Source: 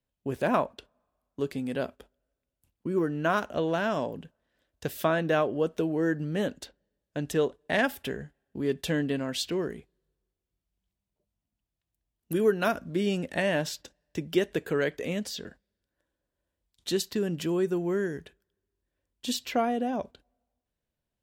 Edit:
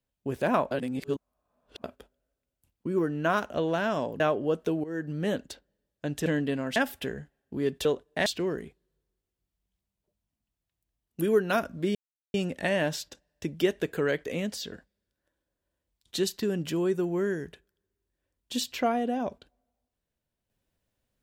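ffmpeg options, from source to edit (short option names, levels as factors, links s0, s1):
-filter_complex "[0:a]asplit=10[s0][s1][s2][s3][s4][s5][s6][s7][s8][s9];[s0]atrim=end=0.712[s10];[s1]atrim=start=0.708:end=1.842,asetpts=PTS-STARTPTS,areverse[s11];[s2]atrim=start=1.838:end=4.202[s12];[s3]atrim=start=5.318:end=5.96,asetpts=PTS-STARTPTS,afade=t=out:st=0.638:d=0.004:c=hsin:silence=0.177828[s13];[s4]atrim=start=5.96:end=7.382,asetpts=PTS-STARTPTS,afade=t=in:d=0.35:silence=0.177828[s14];[s5]atrim=start=8.878:end=9.382[s15];[s6]atrim=start=7.788:end=8.882[s16];[s7]atrim=start=7.378:end=7.792[s17];[s8]atrim=start=9.378:end=13.07,asetpts=PTS-STARTPTS,afade=t=out:st=3.688:d=0.004:c=hsin,apad=pad_dur=0.39[s18];[s9]atrim=start=13.07,asetpts=PTS-STARTPTS,afade=t=in:d=0.004:c=hsin[s19];[s10][s11]acrossfade=d=0.004:c1=hsin:c2=hsin[s20];[s20][s12]acrossfade=d=0.004:c1=hsin:c2=hsin[s21];[s13][s14]concat=n=2:v=0:a=1[s22];[s21][s22]acrossfade=d=0.004:c1=hsin:c2=hsin[s23];[s23][s15]acrossfade=d=0.004:c1=hsin:c2=hsin[s24];[s24][s16]acrossfade=d=0.004:c1=hsin:c2=hsin[s25];[s25][s17]acrossfade=d=0.004:c1=hsin:c2=hsin[s26];[s18][s19]concat=n=2:v=0:a=1[s27];[s26][s27]acrossfade=d=0.004:c1=hsin:c2=hsin"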